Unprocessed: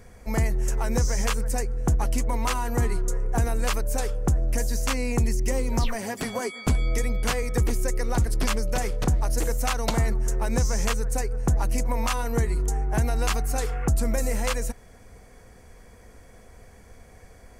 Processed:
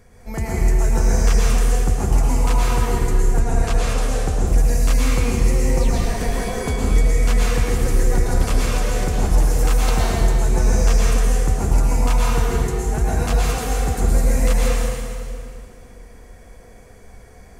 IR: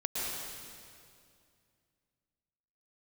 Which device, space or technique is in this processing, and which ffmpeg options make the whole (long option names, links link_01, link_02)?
stairwell: -filter_complex "[1:a]atrim=start_sample=2205[link_01];[0:a][link_01]afir=irnorm=-1:irlink=0,asettb=1/sr,asplit=3[link_02][link_03][link_04];[link_02]atrim=end=3.404[link_05];[link_03]atrim=start=3.4:end=4.47,asetpts=PTS-STARTPTS,afade=type=in:duration=0.004:curve=qsin,afade=type=out:start_time=1.066:duration=0.004:curve=qsin,lowpass=10000[link_06];[link_04]atrim=start=4.466[link_07];[link_05][link_06]acrossfade=duration=0.004:curve1=hsin:curve2=qsin[link_08];[link_08][link_07]acrossfade=duration=0.004:curve1=qsin:curve2=hsin,volume=-1.5dB"